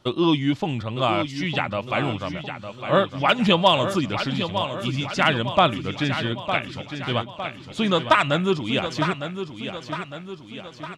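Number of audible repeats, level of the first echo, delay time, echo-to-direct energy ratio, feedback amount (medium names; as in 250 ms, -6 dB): 5, -9.0 dB, 907 ms, -7.5 dB, 53%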